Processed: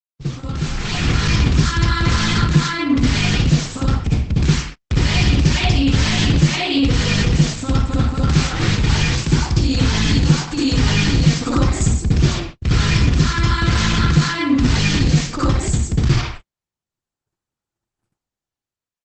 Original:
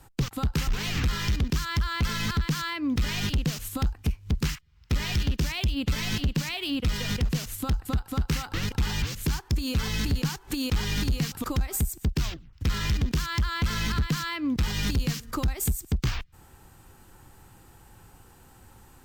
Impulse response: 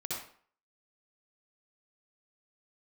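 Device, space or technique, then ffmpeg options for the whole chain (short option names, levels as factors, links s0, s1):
speakerphone in a meeting room: -filter_complex "[1:a]atrim=start_sample=2205[s0];[0:a][s0]afir=irnorm=-1:irlink=0,asplit=2[s1][s2];[s2]adelay=130,highpass=300,lowpass=3400,asoftclip=type=hard:threshold=0.0944,volume=0.178[s3];[s1][s3]amix=inputs=2:normalize=0,dynaudnorm=f=160:g=11:m=5.96,agate=range=0.00251:threshold=0.0398:ratio=16:detection=peak,volume=0.891" -ar 48000 -c:a libopus -b:a 12k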